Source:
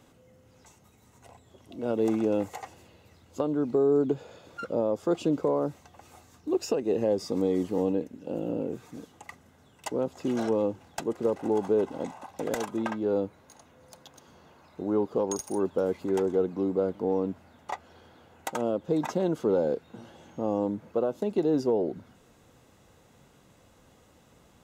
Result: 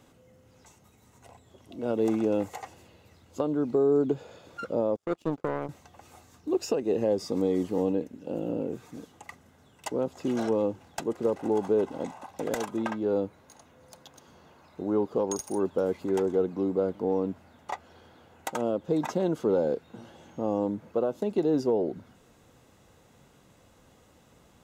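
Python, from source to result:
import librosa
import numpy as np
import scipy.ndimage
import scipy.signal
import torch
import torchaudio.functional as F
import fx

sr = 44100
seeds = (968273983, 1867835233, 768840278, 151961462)

y = fx.power_curve(x, sr, exponent=2.0, at=(4.96, 5.69))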